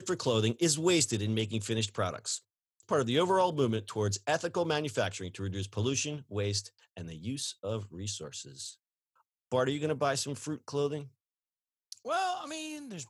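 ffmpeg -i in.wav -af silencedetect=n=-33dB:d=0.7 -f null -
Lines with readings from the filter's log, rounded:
silence_start: 8.68
silence_end: 9.52 | silence_duration: 0.84
silence_start: 10.99
silence_end: 11.92 | silence_duration: 0.94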